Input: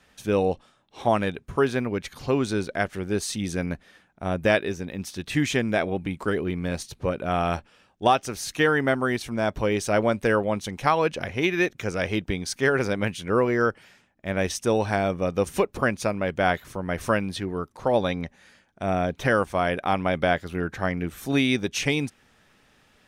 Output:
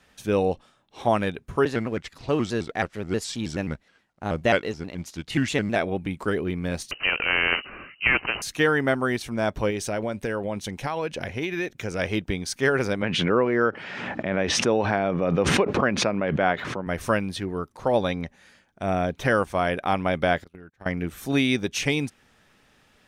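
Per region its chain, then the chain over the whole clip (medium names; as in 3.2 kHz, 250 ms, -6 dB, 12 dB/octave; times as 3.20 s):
1.65–5.76 s: companding laws mixed up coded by A + low-pass 8.6 kHz + vibrato with a chosen wave square 4.7 Hz, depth 160 cents
6.91–8.42 s: frequency inversion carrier 2.9 kHz + spectrum-flattening compressor 2:1
9.70–11.99 s: peaking EQ 1.2 kHz -4.5 dB 0.28 oct + compression 4:1, threshold -24 dBFS
13.02–16.87 s: band-pass 140–2800 Hz + swell ahead of each attack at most 28 dB/s
20.44–20.86 s: gate -32 dBFS, range -31 dB + compression 10:1, threshold -40 dBFS
whole clip: none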